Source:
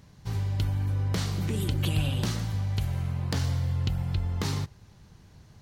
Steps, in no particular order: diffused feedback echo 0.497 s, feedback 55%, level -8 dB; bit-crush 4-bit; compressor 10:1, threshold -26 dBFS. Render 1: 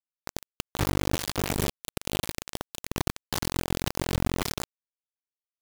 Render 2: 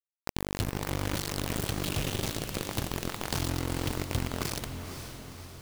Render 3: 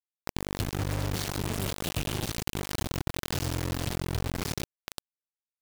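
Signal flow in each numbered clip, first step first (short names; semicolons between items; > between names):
compressor > diffused feedback echo > bit-crush; bit-crush > compressor > diffused feedback echo; diffused feedback echo > bit-crush > compressor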